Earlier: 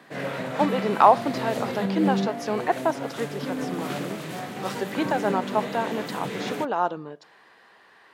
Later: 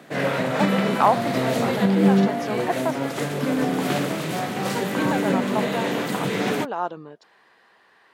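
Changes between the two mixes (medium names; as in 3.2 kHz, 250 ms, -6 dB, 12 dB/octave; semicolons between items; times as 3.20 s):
background +7.5 dB; reverb: off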